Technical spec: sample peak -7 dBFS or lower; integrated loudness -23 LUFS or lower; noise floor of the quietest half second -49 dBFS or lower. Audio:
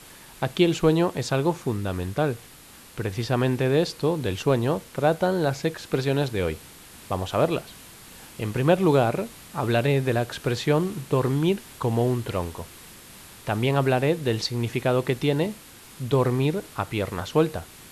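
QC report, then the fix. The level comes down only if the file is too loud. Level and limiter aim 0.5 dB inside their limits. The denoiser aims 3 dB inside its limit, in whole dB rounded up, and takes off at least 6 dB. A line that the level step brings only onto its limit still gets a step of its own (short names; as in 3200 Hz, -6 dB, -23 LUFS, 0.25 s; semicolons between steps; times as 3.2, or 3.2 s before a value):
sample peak -6.0 dBFS: fail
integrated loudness -25.0 LUFS: OK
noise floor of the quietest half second -48 dBFS: fail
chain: denoiser 6 dB, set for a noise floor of -48 dBFS; limiter -7.5 dBFS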